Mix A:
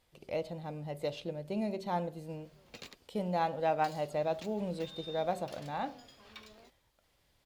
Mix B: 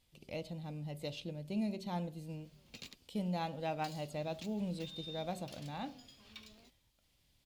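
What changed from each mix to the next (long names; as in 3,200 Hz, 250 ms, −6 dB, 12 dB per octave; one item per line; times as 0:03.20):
master: add flat-topped bell 840 Hz −8.5 dB 2.7 octaves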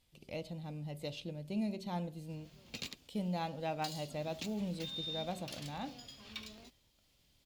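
background +7.0 dB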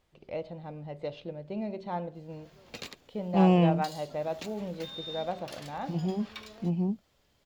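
first voice: add high-frequency loss of the air 180 metres
second voice: unmuted
master: add flat-topped bell 840 Hz +8.5 dB 2.7 octaves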